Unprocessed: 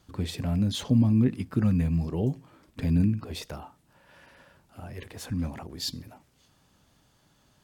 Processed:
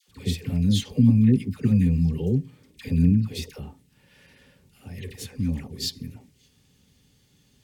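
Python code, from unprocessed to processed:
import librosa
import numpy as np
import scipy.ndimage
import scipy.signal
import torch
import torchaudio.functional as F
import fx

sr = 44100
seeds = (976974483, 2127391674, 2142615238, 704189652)

y = fx.band_shelf(x, sr, hz=940.0, db=-12.0, octaves=1.7)
y = fx.notch_comb(y, sr, f0_hz=330.0)
y = fx.dispersion(y, sr, late='lows', ms=85.0, hz=830.0)
y = y * librosa.db_to_amplitude(4.5)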